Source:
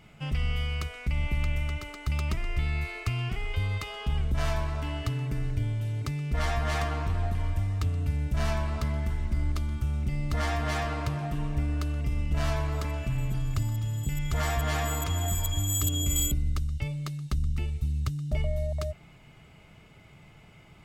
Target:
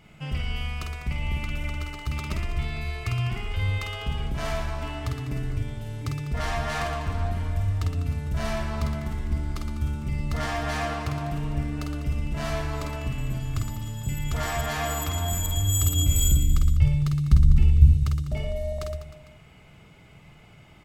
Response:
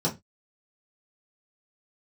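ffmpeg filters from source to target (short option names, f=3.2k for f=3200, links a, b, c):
-filter_complex "[0:a]asettb=1/sr,asplit=3[a][b][c];[a]atrim=end=15.534[d];[b]atrim=start=15.53:end=17.92,asetpts=PTS-STARTPTS,afade=t=in:d=0.004:c=qsin,afade=t=out:st=2.386:d=0.004:c=qsin,asubboost=boost=8:cutoff=200[e];[c]atrim=start=17.916[f];[d][e]acrossfade=d=0.004:c1=hsin:c2=qsin[g];[g][f]acrossfade=d=0.004:c1=qsin:c2=hsin,aecho=1:1:50|115|199.5|309.4|452.2:0.631|0.398|0.251|0.158|0.1"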